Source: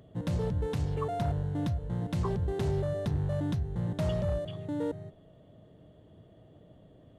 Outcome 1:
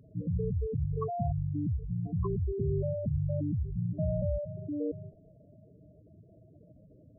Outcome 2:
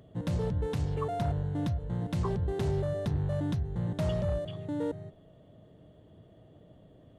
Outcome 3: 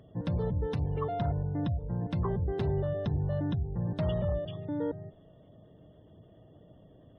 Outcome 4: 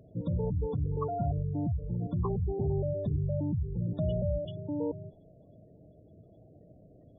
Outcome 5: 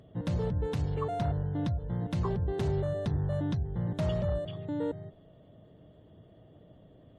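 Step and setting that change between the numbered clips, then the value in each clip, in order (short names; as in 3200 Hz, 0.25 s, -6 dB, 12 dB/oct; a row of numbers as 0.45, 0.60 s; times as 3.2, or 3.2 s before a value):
spectral gate, under each frame's peak: -10, -60, -35, -20, -45 dB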